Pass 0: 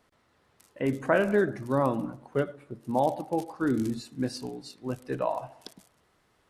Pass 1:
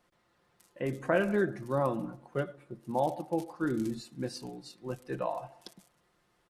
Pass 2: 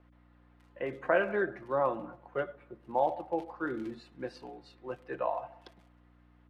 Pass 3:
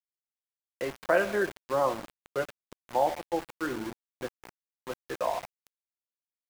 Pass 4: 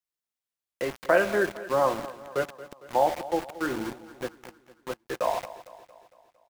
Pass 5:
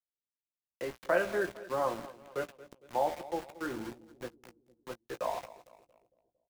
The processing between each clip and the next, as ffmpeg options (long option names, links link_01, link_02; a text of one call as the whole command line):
ffmpeg -i in.wav -af "aecho=1:1:5.7:0.48,volume=-4.5dB" out.wav
ffmpeg -i in.wav -filter_complex "[0:a]aeval=exprs='val(0)+0.00355*(sin(2*PI*60*n/s)+sin(2*PI*2*60*n/s)/2+sin(2*PI*3*60*n/s)/3+sin(2*PI*4*60*n/s)/4+sin(2*PI*5*60*n/s)/5)':channel_layout=same,acrossover=split=390 3200:gain=0.178 1 0.0631[link_01][link_02][link_03];[link_01][link_02][link_03]amix=inputs=3:normalize=0,volume=2.5dB" out.wav
ffmpeg -i in.wav -af "aeval=exprs='val(0)*gte(abs(val(0)),0.0133)':channel_layout=same,volume=2.5dB" out.wav
ffmpeg -i in.wav -af "aecho=1:1:228|456|684|912|1140:0.15|0.0808|0.0436|0.0236|0.0127,volume=3dB" out.wav
ffmpeg -i in.wav -filter_complex "[0:a]acrossover=split=540[link_01][link_02];[link_02]aeval=exprs='sgn(val(0))*max(abs(val(0))-0.00282,0)':channel_layout=same[link_03];[link_01][link_03]amix=inputs=2:normalize=0,asplit=2[link_04][link_05];[link_05]adelay=17,volume=-11dB[link_06];[link_04][link_06]amix=inputs=2:normalize=0,volume=-7.5dB" out.wav